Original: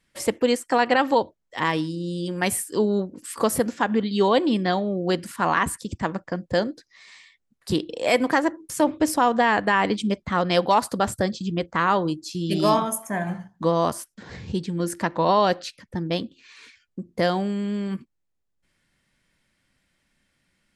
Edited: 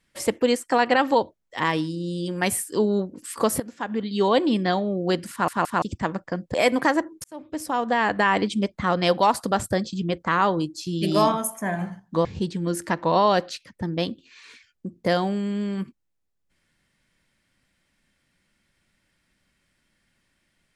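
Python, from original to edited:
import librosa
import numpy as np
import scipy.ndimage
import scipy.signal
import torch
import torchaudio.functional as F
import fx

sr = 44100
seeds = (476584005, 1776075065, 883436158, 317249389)

y = fx.edit(x, sr, fx.fade_in_from(start_s=3.6, length_s=0.78, floor_db=-14.5),
    fx.stutter_over(start_s=5.31, slice_s=0.17, count=3),
    fx.cut(start_s=6.54, length_s=1.48),
    fx.fade_in_span(start_s=8.72, length_s=0.97),
    fx.cut(start_s=13.73, length_s=0.65), tone=tone)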